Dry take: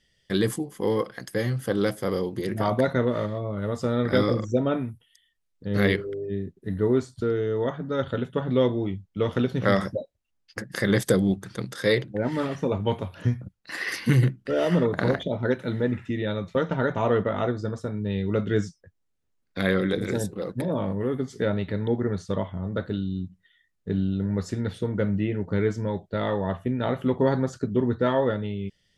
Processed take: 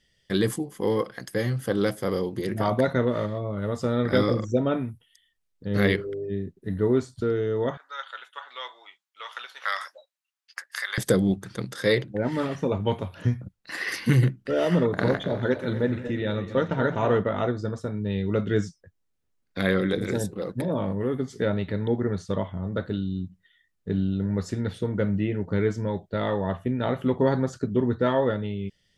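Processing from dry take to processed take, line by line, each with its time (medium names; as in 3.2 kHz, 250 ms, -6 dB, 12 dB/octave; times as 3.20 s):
7.77–10.98 s: high-pass 1 kHz 24 dB/octave
14.83–17.19 s: backward echo that repeats 125 ms, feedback 66%, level -11.5 dB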